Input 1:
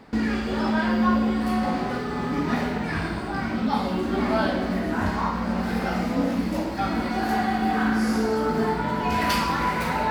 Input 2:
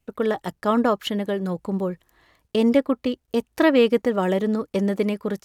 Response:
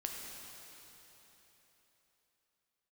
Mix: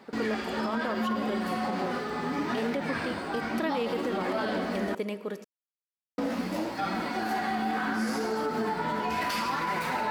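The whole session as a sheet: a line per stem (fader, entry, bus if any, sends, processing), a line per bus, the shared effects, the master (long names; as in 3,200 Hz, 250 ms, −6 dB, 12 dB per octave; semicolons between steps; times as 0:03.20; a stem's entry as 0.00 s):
+2.0 dB, 0.00 s, muted 0:04.95–0:06.18, no send, flanger 0.72 Hz, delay 4.9 ms, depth 9.6 ms, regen +39%
−8.5 dB, 0.00 s, send −8 dB, no processing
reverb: on, RT60 3.9 s, pre-delay 4 ms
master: high-pass filter 330 Hz 6 dB per octave; brickwall limiter −21 dBFS, peak gain reduction 9.5 dB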